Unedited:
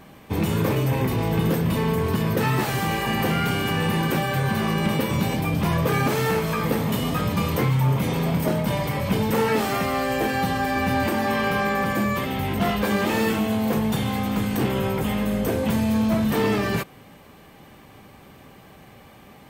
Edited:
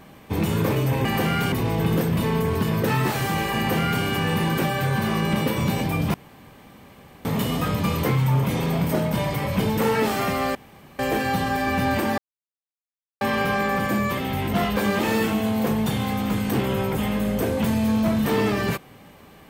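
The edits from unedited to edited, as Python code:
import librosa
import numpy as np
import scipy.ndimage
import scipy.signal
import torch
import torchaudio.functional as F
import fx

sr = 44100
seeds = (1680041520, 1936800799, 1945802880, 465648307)

y = fx.edit(x, sr, fx.duplicate(start_s=3.1, length_s=0.47, to_s=1.05),
    fx.room_tone_fill(start_s=5.67, length_s=1.11),
    fx.insert_room_tone(at_s=10.08, length_s=0.44),
    fx.insert_silence(at_s=11.27, length_s=1.03), tone=tone)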